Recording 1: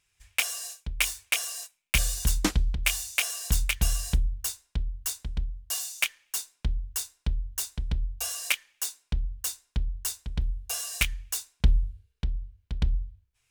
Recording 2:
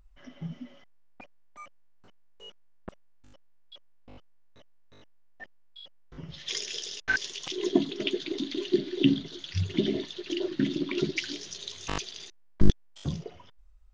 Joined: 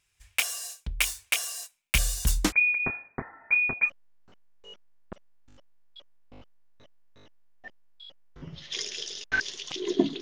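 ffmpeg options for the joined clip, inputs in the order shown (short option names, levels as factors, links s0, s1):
-filter_complex "[0:a]asettb=1/sr,asplit=3[s0][s1][s2];[s0]atrim=end=2.524[s3];[s1]atrim=start=2.52:end=3.9,asetpts=PTS-STARTPTS,afade=t=in:d=0.004:c=qsin,afade=t=out:st=1.376:d=0.004:c=qsin,lowpass=f=2100:t=q:w=0.5098,lowpass=f=2100:t=q:w=0.6013,lowpass=f=2100:t=q:w=0.9,lowpass=f=2100:t=q:w=2.563,afreqshift=-2500[s4];[s2]atrim=start=3.896[s5];[s3][s4]acrossfade=d=0.004:c1=hsin:c2=qsin[s6];[s6][s5]acrossfade=d=0.004:c1=qsin:c2=hsin,apad=whole_dur=10.21,atrim=end=10.21,atrim=end=3.9,asetpts=PTS-STARTPTS[s7];[1:a]atrim=start=1.6:end=7.97,asetpts=PTS-STARTPTS[s8];[s7][s8]acrossfade=d=0.06:c1=tri:c2=tri"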